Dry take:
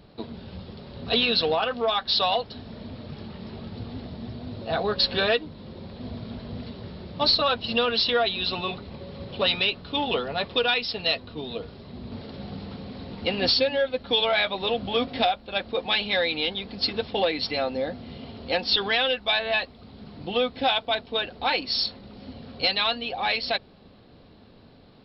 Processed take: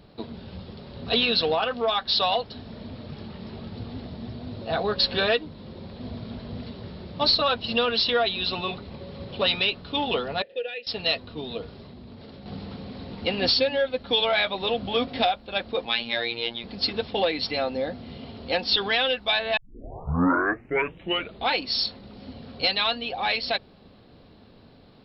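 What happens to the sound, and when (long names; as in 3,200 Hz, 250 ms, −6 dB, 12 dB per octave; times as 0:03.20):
0:10.42–0:10.87: formant filter e
0:11.83–0:12.46: downward compressor, threshold −40 dBFS
0:15.85–0:16.64: phases set to zero 117 Hz
0:19.57: tape start 1.96 s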